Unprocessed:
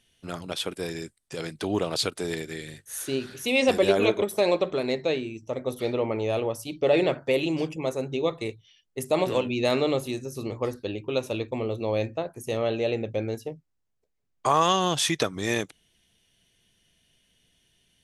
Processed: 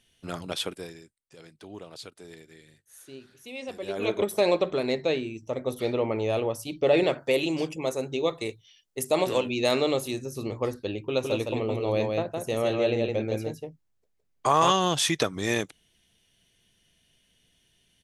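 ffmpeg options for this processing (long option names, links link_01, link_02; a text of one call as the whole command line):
ffmpeg -i in.wav -filter_complex "[0:a]asettb=1/sr,asplit=3[link_01][link_02][link_03];[link_01]atrim=end=7.034[link_04];[link_02]atrim=start=7.03:end=10.13,asetpts=PTS-STARTPTS,afade=type=in:duration=0.004:curve=qsin,afade=type=out:start_time=3.096:duration=0.004:curve=qsin,bass=frequency=250:gain=-4,treble=frequency=4000:gain=5[link_05];[link_03]atrim=start=10.126[link_06];[link_04][link_05]acrossfade=duration=0.004:curve1=hsin:curve2=qsin[link_07];[link_07][link_06]acrossfade=duration=0.004:curve1=qsin:curve2=hsin,asplit=3[link_08][link_09][link_10];[link_08]afade=type=out:start_time=11.21:duration=0.02[link_11];[link_09]aecho=1:1:163:0.668,afade=type=in:start_time=11.21:duration=0.02,afade=type=out:start_time=14.7:duration=0.02[link_12];[link_10]afade=type=in:start_time=14.7:duration=0.02[link_13];[link_11][link_12][link_13]amix=inputs=3:normalize=0,asplit=3[link_14][link_15][link_16];[link_14]atrim=end=1.12,asetpts=PTS-STARTPTS,afade=type=out:start_time=0.63:duration=0.49:curve=qua:silence=0.158489[link_17];[link_15]atrim=start=1.12:end=3.74,asetpts=PTS-STARTPTS,volume=-16dB[link_18];[link_16]atrim=start=3.74,asetpts=PTS-STARTPTS,afade=type=in:duration=0.49:curve=qua:silence=0.158489[link_19];[link_17][link_18][link_19]concat=n=3:v=0:a=1" out.wav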